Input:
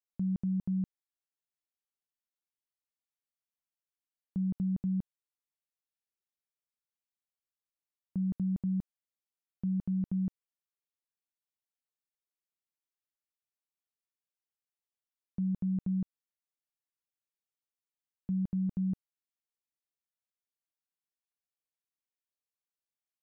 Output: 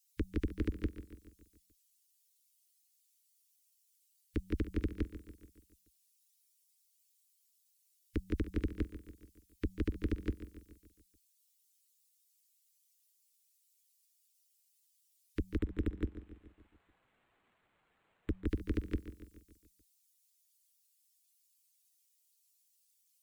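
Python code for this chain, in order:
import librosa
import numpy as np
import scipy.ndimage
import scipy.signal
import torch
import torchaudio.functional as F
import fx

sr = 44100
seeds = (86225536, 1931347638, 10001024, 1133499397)

y = fx.bin_expand(x, sr, power=2.0)
y = scipy.signal.sosfilt(scipy.signal.cheby2(4, 70, [190.0, 570.0], 'bandstop', fs=sr, output='sos'), y)
y = fx.tilt_eq(y, sr, slope=-1.5)
y = fx.fold_sine(y, sr, drive_db=17, ceiling_db=-40.0)
y = fx.echo_feedback(y, sr, ms=143, feedback_pct=55, wet_db=-13.0)
y = fx.resample_linear(y, sr, factor=8, at=(15.58, 18.48))
y = y * librosa.db_to_amplitude(13.5)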